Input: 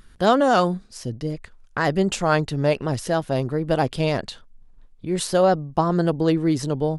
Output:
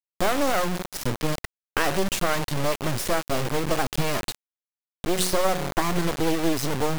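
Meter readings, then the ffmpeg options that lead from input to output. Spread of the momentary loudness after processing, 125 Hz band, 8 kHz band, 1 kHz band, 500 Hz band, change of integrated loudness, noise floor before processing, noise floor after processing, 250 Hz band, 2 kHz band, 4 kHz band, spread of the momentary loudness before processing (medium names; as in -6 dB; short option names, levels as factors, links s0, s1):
6 LU, -5.5 dB, +4.5 dB, -4.0 dB, -5.0 dB, -4.0 dB, -50 dBFS, under -85 dBFS, -5.0 dB, 0.0 dB, +2.0 dB, 12 LU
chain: -af "bandreject=f=183.2:t=h:w=4,bandreject=f=366.4:t=h:w=4,bandreject=f=549.6:t=h:w=4,bandreject=f=732.8:t=h:w=4,bandreject=f=916:t=h:w=4,bandreject=f=1099.2:t=h:w=4,bandreject=f=1282.4:t=h:w=4,bandreject=f=1465.6:t=h:w=4,bandreject=f=1648.8:t=h:w=4,bandreject=f=1832:t=h:w=4,bandreject=f=2015.2:t=h:w=4,bandreject=f=2198.4:t=h:w=4,bandreject=f=2381.6:t=h:w=4,bandreject=f=2564.8:t=h:w=4,bandreject=f=2748:t=h:w=4,bandreject=f=2931.2:t=h:w=4,bandreject=f=3114.4:t=h:w=4,bandreject=f=3297.6:t=h:w=4,bandreject=f=3480.8:t=h:w=4,bandreject=f=3664:t=h:w=4,bandreject=f=3847.2:t=h:w=4,bandreject=f=4030.4:t=h:w=4,bandreject=f=4213.6:t=h:w=4,bandreject=f=4396.8:t=h:w=4,bandreject=f=4580:t=h:w=4,bandreject=f=4763.2:t=h:w=4,bandreject=f=4946.4:t=h:w=4,bandreject=f=5129.6:t=h:w=4,bandreject=f=5312.8:t=h:w=4,bandreject=f=5496:t=h:w=4,bandreject=f=5679.2:t=h:w=4,bandreject=f=5862.4:t=h:w=4,acompressor=threshold=0.0708:ratio=8,acrusher=bits=3:dc=4:mix=0:aa=0.000001,volume=2.51"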